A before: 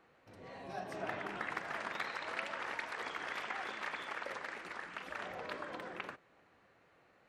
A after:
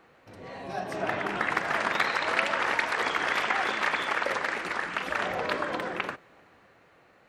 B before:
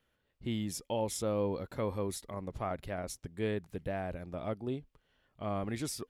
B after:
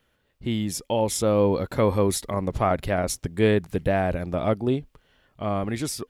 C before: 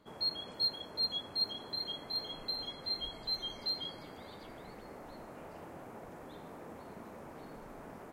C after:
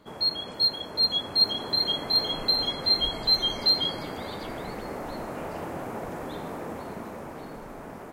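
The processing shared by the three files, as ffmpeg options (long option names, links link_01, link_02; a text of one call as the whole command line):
ffmpeg -i in.wav -af "dynaudnorm=framelen=160:gausssize=17:maxgain=5.5dB,volume=8.5dB" out.wav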